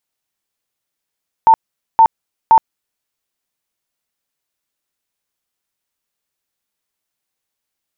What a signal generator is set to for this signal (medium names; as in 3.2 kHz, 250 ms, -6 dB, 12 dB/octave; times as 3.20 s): tone bursts 899 Hz, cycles 62, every 0.52 s, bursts 3, -4 dBFS